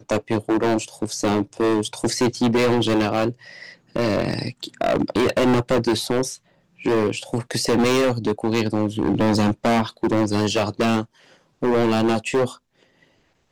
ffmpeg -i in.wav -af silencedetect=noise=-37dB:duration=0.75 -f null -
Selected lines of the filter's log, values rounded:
silence_start: 12.57
silence_end: 13.51 | silence_duration: 0.94